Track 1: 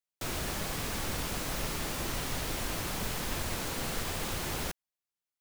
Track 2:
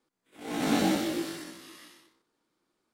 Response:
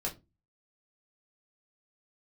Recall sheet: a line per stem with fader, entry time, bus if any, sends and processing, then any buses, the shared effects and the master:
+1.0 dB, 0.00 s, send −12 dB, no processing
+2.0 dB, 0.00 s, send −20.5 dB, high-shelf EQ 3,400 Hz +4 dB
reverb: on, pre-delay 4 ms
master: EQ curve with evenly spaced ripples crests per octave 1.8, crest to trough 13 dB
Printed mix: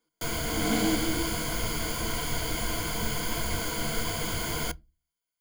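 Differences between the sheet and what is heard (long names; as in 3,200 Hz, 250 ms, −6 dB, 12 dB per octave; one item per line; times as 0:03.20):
stem 2 +2.0 dB → −4.5 dB
reverb return −8.0 dB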